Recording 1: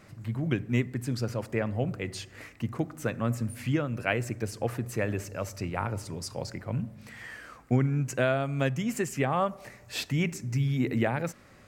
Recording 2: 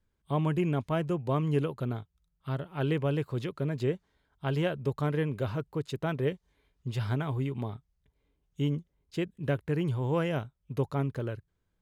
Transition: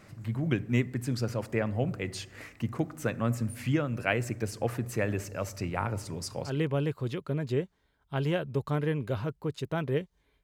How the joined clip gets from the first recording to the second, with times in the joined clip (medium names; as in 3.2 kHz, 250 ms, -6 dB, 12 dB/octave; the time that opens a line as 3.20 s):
recording 1
6.49 s: go over to recording 2 from 2.80 s, crossfade 0.22 s